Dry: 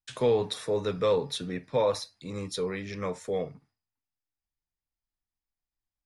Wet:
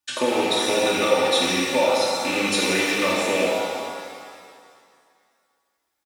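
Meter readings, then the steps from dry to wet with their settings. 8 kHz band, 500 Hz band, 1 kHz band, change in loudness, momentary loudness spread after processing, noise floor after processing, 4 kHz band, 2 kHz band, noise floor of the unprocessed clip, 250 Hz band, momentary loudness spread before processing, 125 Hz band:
+16.5 dB, +6.0 dB, +12.5 dB, +9.0 dB, 11 LU, -76 dBFS, +15.0 dB, +20.0 dB, under -85 dBFS, +10.5 dB, 9 LU, -1.0 dB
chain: rattle on loud lows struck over -39 dBFS, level -27 dBFS; high-pass 110 Hz 12 dB/octave; bass shelf 150 Hz -8 dB; hum notches 50/100/150/200 Hz; comb 3.4 ms, depth 97%; compression, threshold -29 dBFS, peak gain reduction 10.5 dB; pitch-shifted reverb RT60 2.1 s, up +7 st, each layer -8 dB, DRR -4 dB; trim +8 dB

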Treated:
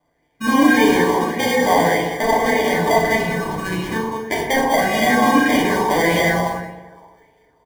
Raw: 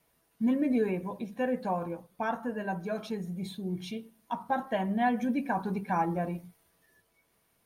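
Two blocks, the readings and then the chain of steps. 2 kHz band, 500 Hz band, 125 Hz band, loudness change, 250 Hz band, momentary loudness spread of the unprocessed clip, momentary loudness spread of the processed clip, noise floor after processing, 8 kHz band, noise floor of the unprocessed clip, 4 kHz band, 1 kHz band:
+21.0 dB, +16.0 dB, +11.0 dB, +15.0 dB, +12.0 dB, 11 LU, 10 LU, -65 dBFS, +28.0 dB, -72 dBFS, +23.0 dB, +15.0 dB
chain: rattle on loud lows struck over -35 dBFS, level -32 dBFS; low-pass 7.8 kHz 24 dB/octave; peaking EQ 610 Hz +5 dB 0.79 oct; level rider gain up to 7 dB; transient shaper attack +3 dB, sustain +8 dB; peak limiter -13.5 dBFS, peak gain reduction 7.5 dB; sample-and-hold 33×; on a send: delay 197 ms -6 dB; on the sum: FDN reverb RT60 1.3 s, low-frequency decay 0.75×, high-frequency decay 0.3×, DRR -4 dB; sweeping bell 1.7 Hz 980–2700 Hz +11 dB; trim -2 dB

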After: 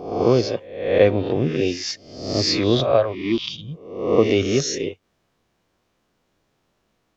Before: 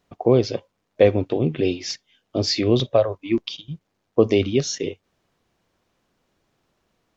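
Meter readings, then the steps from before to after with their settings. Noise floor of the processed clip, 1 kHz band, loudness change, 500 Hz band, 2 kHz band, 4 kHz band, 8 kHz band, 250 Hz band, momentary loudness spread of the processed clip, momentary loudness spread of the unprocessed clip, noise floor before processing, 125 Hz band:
-70 dBFS, +4.0 dB, +1.0 dB, +1.0 dB, +4.0 dB, +3.0 dB, no reading, +0.5 dB, 12 LU, 14 LU, -74 dBFS, 0.0 dB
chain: reverse spectral sustain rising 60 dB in 0.74 s; dynamic bell 1.4 kHz, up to +4 dB, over -38 dBFS, Q 1.3; trim -1.5 dB

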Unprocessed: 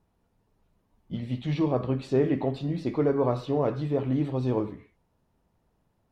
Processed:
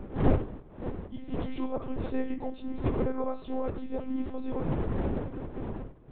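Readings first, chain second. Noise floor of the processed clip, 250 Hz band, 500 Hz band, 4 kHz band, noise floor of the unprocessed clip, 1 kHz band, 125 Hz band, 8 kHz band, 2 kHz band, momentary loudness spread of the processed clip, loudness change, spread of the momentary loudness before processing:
-49 dBFS, -3.5 dB, -6.0 dB, -7.0 dB, -72 dBFS, -2.5 dB, -4.0 dB, no reading, -2.0 dB, 9 LU, -6.0 dB, 8 LU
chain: wind noise 320 Hz -27 dBFS; monotone LPC vocoder at 8 kHz 260 Hz; trim -6 dB

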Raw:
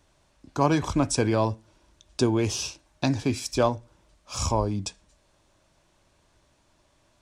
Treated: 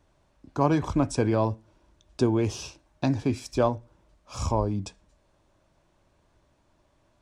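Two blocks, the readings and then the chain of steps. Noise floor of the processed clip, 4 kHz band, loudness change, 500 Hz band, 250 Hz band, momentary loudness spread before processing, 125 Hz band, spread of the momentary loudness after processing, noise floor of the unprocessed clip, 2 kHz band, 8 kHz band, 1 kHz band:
-67 dBFS, -7.5 dB, -0.5 dB, -0.5 dB, 0.0 dB, 14 LU, 0.0 dB, 16 LU, -66 dBFS, -4.0 dB, -8.5 dB, -1.5 dB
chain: treble shelf 2.1 kHz -9.5 dB

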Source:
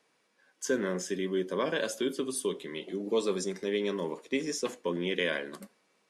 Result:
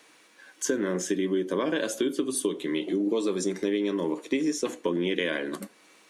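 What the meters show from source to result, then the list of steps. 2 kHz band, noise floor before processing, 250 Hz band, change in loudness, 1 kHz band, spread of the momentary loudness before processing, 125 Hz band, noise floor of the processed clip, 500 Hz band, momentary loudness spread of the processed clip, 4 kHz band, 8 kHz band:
+1.5 dB, -72 dBFS, +7.0 dB, +4.0 dB, +1.5 dB, 7 LU, +2.5 dB, -58 dBFS, +2.5 dB, 4 LU, +1.5 dB, +5.0 dB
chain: peaking EQ 310 Hz +11 dB 0.27 oct; band-stop 5 kHz, Q 9.7; compression, threshold -30 dBFS, peak gain reduction 9 dB; tape noise reduction on one side only encoder only; trim +7 dB

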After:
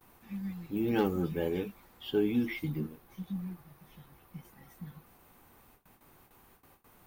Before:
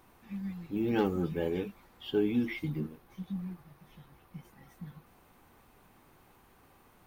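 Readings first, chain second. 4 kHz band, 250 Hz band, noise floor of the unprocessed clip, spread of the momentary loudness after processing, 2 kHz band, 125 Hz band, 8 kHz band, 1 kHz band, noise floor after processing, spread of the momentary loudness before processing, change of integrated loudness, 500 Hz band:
+0.5 dB, 0.0 dB, -62 dBFS, 20 LU, 0.0 dB, 0.0 dB, no reading, 0.0 dB, -63 dBFS, 20 LU, 0.0 dB, 0.0 dB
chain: gate with hold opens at -51 dBFS; treble shelf 11 kHz +10.5 dB

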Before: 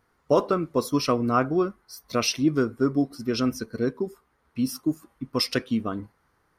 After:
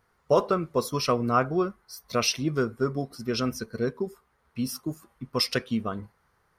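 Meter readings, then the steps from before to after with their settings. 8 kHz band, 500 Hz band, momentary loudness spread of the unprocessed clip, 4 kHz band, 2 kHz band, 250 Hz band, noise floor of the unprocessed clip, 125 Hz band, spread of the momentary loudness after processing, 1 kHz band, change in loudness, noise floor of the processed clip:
0.0 dB, -1.0 dB, 11 LU, 0.0 dB, 0.0 dB, -5.0 dB, -69 dBFS, -0.5 dB, 11 LU, 0.0 dB, -2.0 dB, -70 dBFS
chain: peaking EQ 290 Hz -12 dB 0.31 oct

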